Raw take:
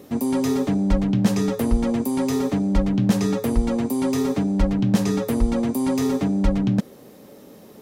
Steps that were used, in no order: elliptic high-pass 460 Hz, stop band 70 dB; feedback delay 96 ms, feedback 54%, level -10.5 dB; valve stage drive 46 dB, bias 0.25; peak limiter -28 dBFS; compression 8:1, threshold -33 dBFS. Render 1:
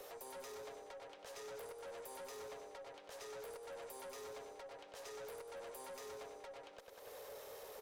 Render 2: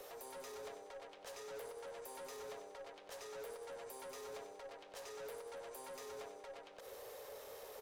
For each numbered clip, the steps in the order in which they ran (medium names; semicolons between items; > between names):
feedback delay > compression > peak limiter > elliptic high-pass > valve stage; peak limiter > compression > elliptic high-pass > valve stage > feedback delay